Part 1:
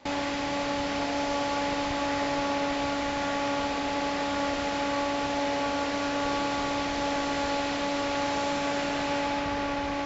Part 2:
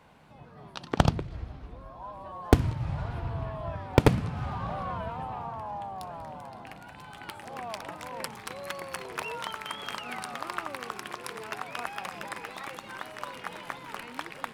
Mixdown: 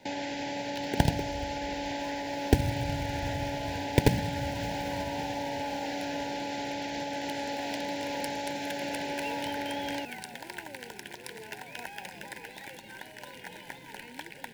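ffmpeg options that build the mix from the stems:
ffmpeg -i stem1.wav -i stem2.wav -filter_complex "[0:a]highpass=110,alimiter=limit=-23dB:level=0:latency=1:release=157,volume=-2dB[link_01];[1:a]equalizer=frequency=670:width_type=o:width=0.51:gain=-5,acrusher=bits=3:mode=log:mix=0:aa=0.000001,volume=-2.5dB[link_02];[link_01][link_02]amix=inputs=2:normalize=0,asuperstop=centerf=1200:order=8:qfactor=2.3" out.wav

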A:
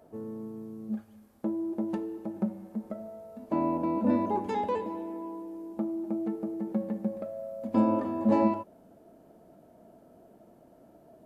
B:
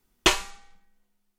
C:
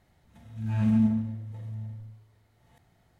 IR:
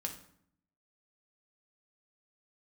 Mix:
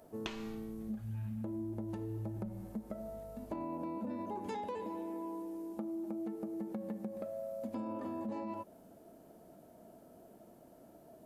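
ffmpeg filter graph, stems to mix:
-filter_complex "[0:a]highshelf=frequency=4200:gain=8.5,alimiter=limit=-23.5dB:level=0:latency=1:release=83,volume=-2dB[link_01];[1:a]volume=-7dB[link_02];[2:a]asubboost=boost=5.5:cutoff=250,aeval=exprs='val(0)+0.00562*(sin(2*PI*50*n/s)+sin(2*PI*2*50*n/s)/2+sin(2*PI*3*50*n/s)/3+sin(2*PI*4*50*n/s)/4+sin(2*PI*5*50*n/s)/5)':channel_layout=same,adelay=450,volume=-9.5dB[link_03];[link_02][link_03]amix=inputs=2:normalize=0,lowpass=4500,acompressor=threshold=-34dB:ratio=6,volume=0dB[link_04];[link_01][link_04]amix=inputs=2:normalize=0,acompressor=threshold=-37dB:ratio=6"

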